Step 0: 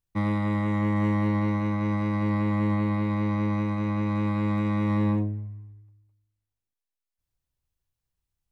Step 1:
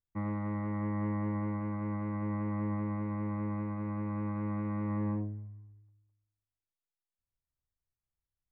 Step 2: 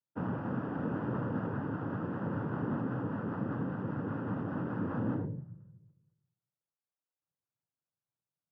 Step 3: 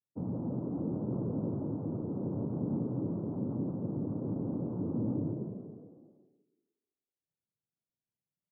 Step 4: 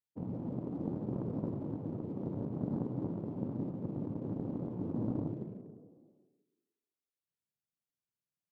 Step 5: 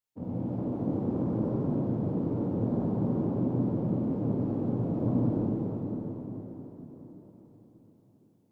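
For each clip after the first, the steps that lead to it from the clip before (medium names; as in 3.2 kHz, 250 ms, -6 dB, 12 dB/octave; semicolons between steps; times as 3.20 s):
low-pass 1.9 kHz 24 dB/octave; trim -9 dB
resonant high shelf 1.5 kHz -12 dB, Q 1.5; noise-vocoded speech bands 8
Gaussian low-pass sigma 13 samples; on a send: frequency-shifting echo 168 ms, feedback 46%, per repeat +46 Hz, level -4 dB
in parallel at -5 dB: hard clipper -39 dBFS, distortion -6 dB; on the sum: Chebyshev shaper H 3 -14 dB, 7 -44 dB, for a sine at -21.5 dBFS
plate-style reverb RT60 4.8 s, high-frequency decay 0.85×, DRR -8 dB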